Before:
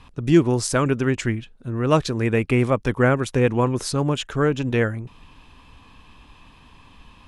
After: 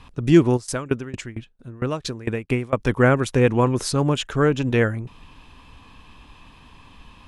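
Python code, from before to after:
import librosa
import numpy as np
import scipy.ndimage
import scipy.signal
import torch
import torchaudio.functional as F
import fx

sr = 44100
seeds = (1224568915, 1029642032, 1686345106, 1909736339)

y = fx.tremolo_decay(x, sr, direction='decaying', hz=4.4, depth_db=22, at=(0.56, 2.78), fade=0.02)
y = F.gain(torch.from_numpy(y), 1.5).numpy()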